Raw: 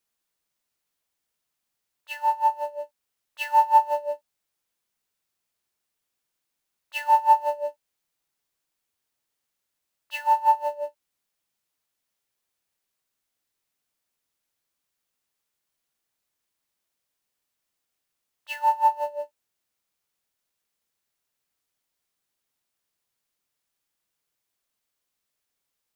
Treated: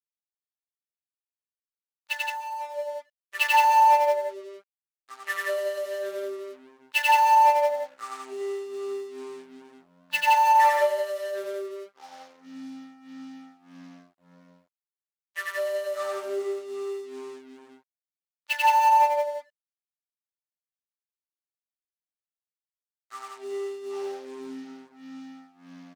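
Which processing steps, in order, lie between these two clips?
adaptive Wiener filter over 15 samples
on a send at −20 dB: convolution reverb RT60 0.50 s, pre-delay 3 ms
on the sum: brickwall limiter −15 dBFS, peak gain reduction 7 dB
in parallel at −5 dB: soft clipping −30.5 dBFS, distortion −5 dB
0:02.18–0:02.74: on the sum: downward compressor 3 to 1, threshold −40 dBFS, peak gain reduction 16 dB
delay with pitch and tempo change per echo 184 ms, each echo −7 semitones, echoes 3, each echo −6 dB
loudspeakers that aren't time-aligned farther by 31 metres −1 dB, 58 metres −3 dB
dead-zone distortion −53 dBFS
high-pass filter 1,400 Hz 6 dB per octave
level +7 dB

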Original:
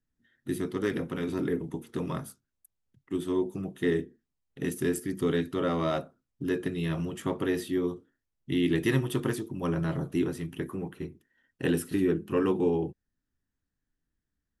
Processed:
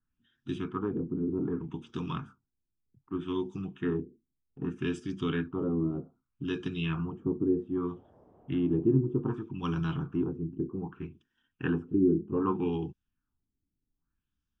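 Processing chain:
auto-filter low-pass sine 0.64 Hz 340–4,500 Hz
phaser with its sweep stopped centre 2,900 Hz, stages 8
0:07.91–0:08.92: noise in a band 55–750 Hz −60 dBFS

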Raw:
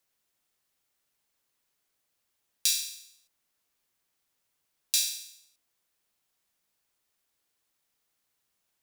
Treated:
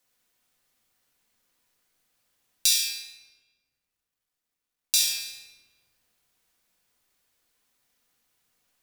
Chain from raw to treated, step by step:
0:02.86–0:05.20: mu-law and A-law mismatch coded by A
rectangular room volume 1,200 cubic metres, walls mixed, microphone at 1.9 metres
level +3 dB

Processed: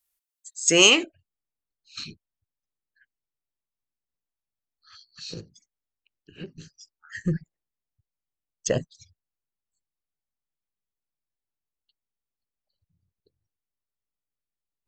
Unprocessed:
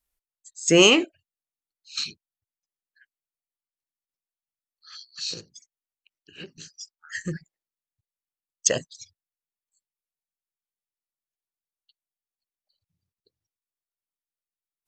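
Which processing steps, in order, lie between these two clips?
spectral tilt +2 dB per octave, from 0:01.03 −3 dB per octave
level −1.5 dB

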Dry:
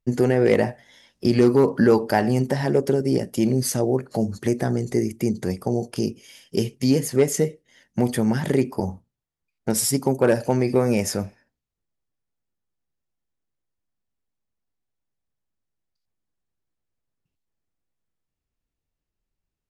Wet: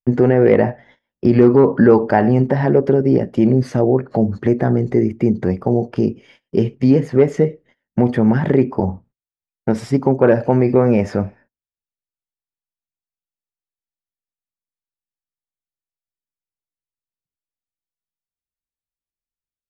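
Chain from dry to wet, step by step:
low-pass filter 1,800 Hz 12 dB per octave
in parallel at −3 dB: brickwall limiter −13.5 dBFS, peak gain reduction 7 dB
on the sum: noise gate −48 dBFS, range −25 dB
level +3 dB

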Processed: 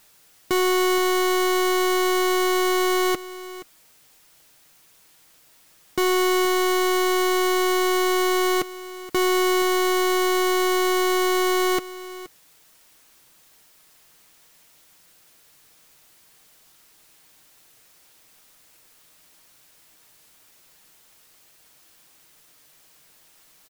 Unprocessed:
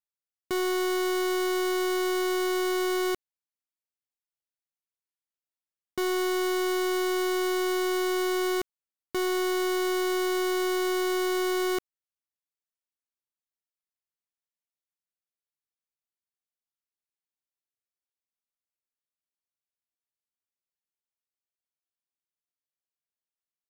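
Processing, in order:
converter with a step at zero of −53.5 dBFS
comb filter 6.4 ms, depth 34%
single-tap delay 474 ms −16.5 dB
level +7.5 dB

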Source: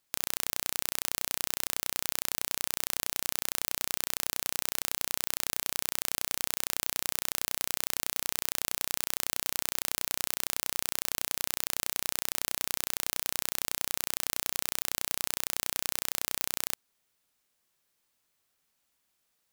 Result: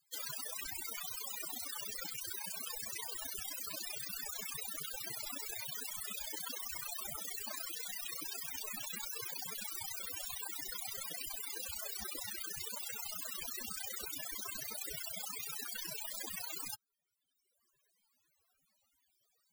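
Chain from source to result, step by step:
spectral peaks only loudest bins 32
reverb reduction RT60 1.6 s
level +11 dB

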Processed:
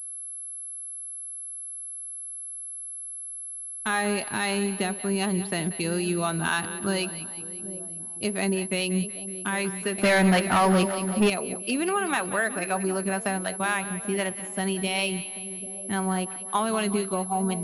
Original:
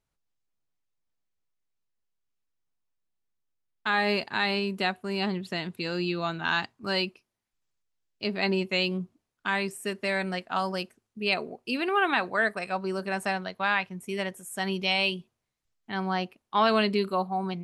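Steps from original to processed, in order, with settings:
low-shelf EQ 410 Hz +5 dB
downward compressor, threshold −26 dBFS, peak gain reduction 9 dB
two-band tremolo in antiphase 3.9 Hz, depth 50%, crossover 440 Hz
echo with a time of its own for lows and highs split 650 Hz, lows 789 ms, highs 186 ms, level −13 dB
0:09.98–0:11.30: leveller curve on the samples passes 3
switching amplifier with a slow clock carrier 11,000 Hz
level +5.5 dB

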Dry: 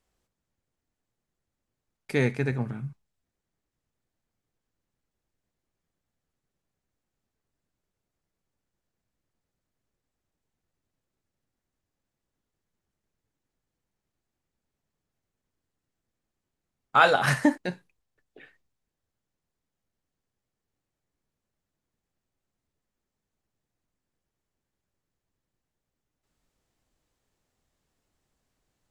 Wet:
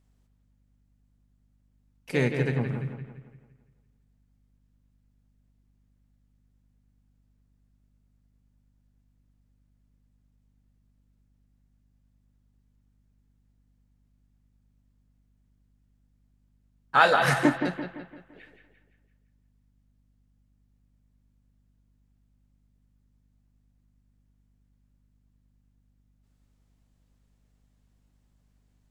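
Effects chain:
bucket-brigade delay 170 ms, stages 4,096, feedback 46%, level −7.5 dB
mains hum 50 Hz, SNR 30 dB
pitch-shifted copies added +3 semitones −10 dB
level −1 dB

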